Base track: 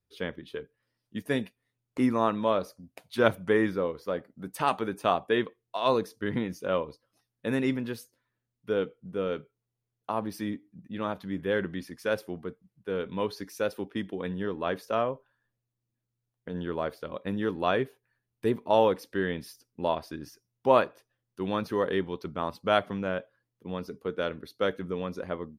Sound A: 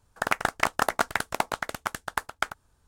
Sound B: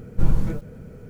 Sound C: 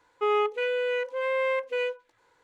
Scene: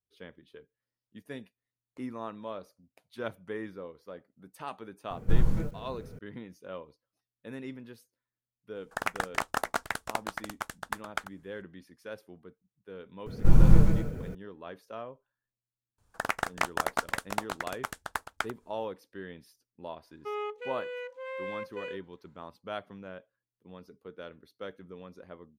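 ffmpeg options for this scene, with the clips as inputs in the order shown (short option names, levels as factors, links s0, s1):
-filter_complex "[2:a]asplit=2[s0][s1];[1:a]asplit=2[s2][s3];[0:a]volume=0.211[s4];[s1]aecho=1:1:134.1|242:0.891|0.562[s5];[s0]atrim=end=1.09,asetpts=PTS-STARTPTS,volume=0.596,afade=t=in:d=0.004:c=hsin,afade=t=out:st=1.086:d=0.004:c=hsin,adelay=5100[s6];[s2]atrim=end=2.87,asetpts=PTS-STARTPTS,volume=0.501,afade=t=in:d=0.004:c=hsin,afade=t=out:st=2.866:d=0.004:c=hsin,adelay=8750[s7];[s5]atrim=end=1.09,asetpts=PTS-STARTPTS,volume=0.944,afade=t=in:d=0.004:c=hsin,afade=t=out:st=1.086:d=0.004:c=hsin,adelay=13260[s8];[s3]atrim=end=2.87,asetpts=PTS-STARTPTS,volume=0.562,afade=t=in:d=0.004:c=hsin,afade=t=out:st=2.866:d=0.004:c=hsin,adelay=15980[s9];[3:a]atrim=end=2.43,asetpts=PTS-STARTPTS,volume=0.282,afade=t=in:d=0.004:c=hsin,afade=t=out:st=2.426:d=0.004:c=hsin,adelay=883764S[s10];[s4][s6][s7][s8][s9][s10]amix=inputs=6:normalize=0"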